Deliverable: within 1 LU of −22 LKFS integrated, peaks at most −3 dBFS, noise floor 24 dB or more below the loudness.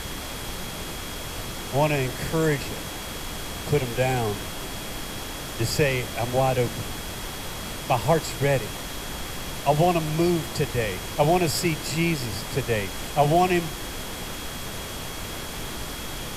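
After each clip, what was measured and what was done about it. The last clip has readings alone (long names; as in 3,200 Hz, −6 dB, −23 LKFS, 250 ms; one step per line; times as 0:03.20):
interfering tone 3,300 Hz; level of the tone −43 dBFS; background noise floor −34 dBFS; target noise floor −51 dBFS; integrated loudness −26.5 LKFS; sample peak −7.0 dBFS; target loudness −22.0 LKFS
→ notch filter 3,300 Hz, Q 30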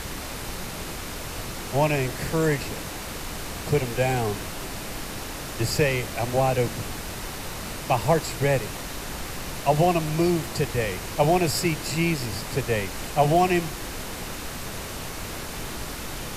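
interfering tone none found; background noise floor −35 dBFS; target noise floor −51 dBFS
→ noise reduction from a noise print 16 dB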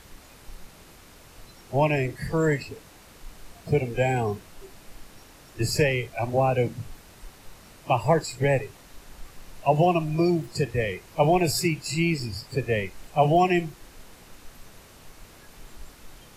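background noise floor −50 dBFS; integrated loudness −25.0 LKFS; sample peak −7.5 dBFS; target loudness −22.0 LKFS
→ level +3 dB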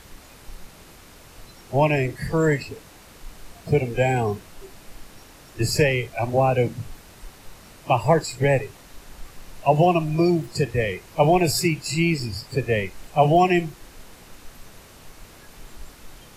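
integrated loudness −22.0 LKFS; sample peak −4.5 dBFS; background noise floor −47 dBFS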